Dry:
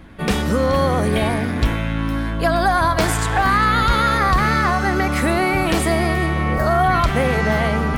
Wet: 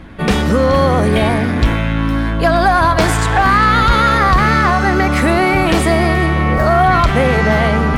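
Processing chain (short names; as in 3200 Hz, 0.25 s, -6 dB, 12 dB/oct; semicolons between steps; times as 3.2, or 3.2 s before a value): high shelf 9200 Hz -9.5 dB; in parallel at -5.5 dB: soft clip -18.5 dBFS, distortion -10 dB; on the sum: gain +3 dB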